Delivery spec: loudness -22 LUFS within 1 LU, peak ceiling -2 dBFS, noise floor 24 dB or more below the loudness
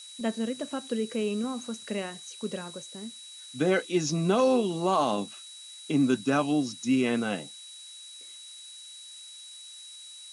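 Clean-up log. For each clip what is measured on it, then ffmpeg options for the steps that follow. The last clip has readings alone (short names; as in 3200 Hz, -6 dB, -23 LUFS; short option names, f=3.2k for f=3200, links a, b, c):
steady tone 3900 Hz; tone level -45 dBFS; noise floor -46 dBFS; noise floor target -53 dBFS; loudness -28.5 LUFS; peak -11.5 dBFS; loudness target -22.0 LUFS
-> -af "bandreject=f=3.9k:w=30"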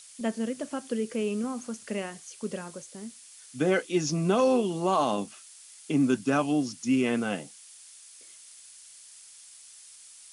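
steady tone none; noise floor -51 dBFS; noise floor target -53 dBFS
-> -af "afftdn=nr=6:nf=-51"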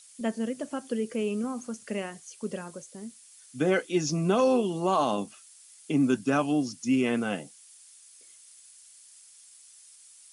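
noise floor -54 dBFS; loudness -28.5 LUFS; peak -11.5 dBFS; loudness target -22.0 LUFS
-> -af "volume=6.5dB"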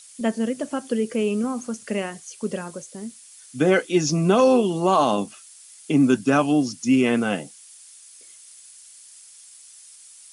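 loudness -22.0 LUFS; peak -5.0 dBFS; noise floor -47 dBFS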